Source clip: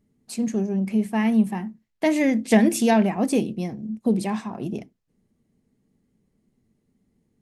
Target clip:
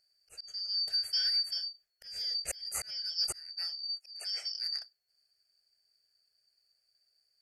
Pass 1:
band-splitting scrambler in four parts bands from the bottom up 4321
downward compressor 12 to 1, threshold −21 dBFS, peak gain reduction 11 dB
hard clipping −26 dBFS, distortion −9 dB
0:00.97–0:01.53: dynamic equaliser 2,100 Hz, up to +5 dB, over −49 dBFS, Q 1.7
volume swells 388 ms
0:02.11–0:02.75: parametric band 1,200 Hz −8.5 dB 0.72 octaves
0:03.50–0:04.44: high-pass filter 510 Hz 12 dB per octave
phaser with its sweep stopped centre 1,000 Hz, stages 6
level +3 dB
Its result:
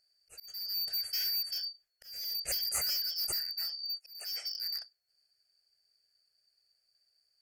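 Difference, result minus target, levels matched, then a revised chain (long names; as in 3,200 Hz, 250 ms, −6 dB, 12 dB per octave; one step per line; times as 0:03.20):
hard clipping: distortion +25 dB
band-splitting scrambler in four parts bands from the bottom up 4321
downward compressor 12 to 1, threshold −21 dBFS, peak gain reduction 11 dB
hard clipping −15.5 dBFS, distortion −34 dB
0:00.97–0:01.53: dynamic equaliser 2,100 Hz, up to +5 dB, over −49 dBFS, Q 1.7
volume swells 388 ms
0:02.11–0:02.75: parametric band 1,200 Hz −8.5 dB 0.72 octaves
0:03.50–0:04.44: high-pass filter 510 Hz 12 dB per octave
phaser with its sweep stopped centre 1,000 Hz, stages 6
level +3 dB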